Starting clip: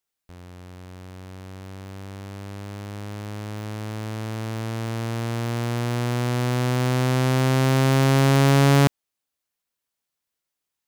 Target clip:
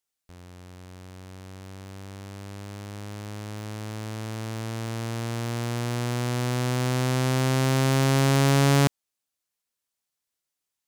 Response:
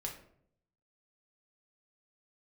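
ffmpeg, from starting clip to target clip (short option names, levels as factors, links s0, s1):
-af "equalizer=f=7700:w=0.56:g=4.5,volume=0.668"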